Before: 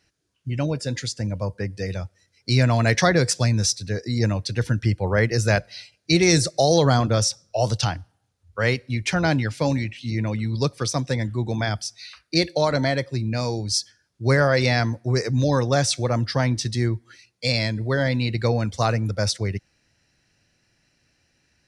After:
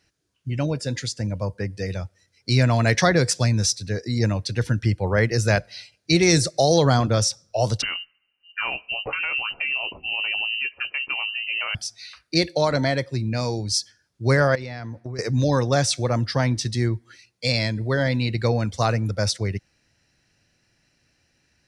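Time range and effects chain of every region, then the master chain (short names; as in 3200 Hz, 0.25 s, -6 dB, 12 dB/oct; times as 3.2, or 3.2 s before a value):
7.82–11.75 compressor, threshold -22 dBFS + inverted band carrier 2900 Hz + doubler 16 ms -10.5 dB
14.55–15.19 compressor 12:1, threshold -28 dBFS + high shelf 4800 Hz -11.5 dB
whole clip: dry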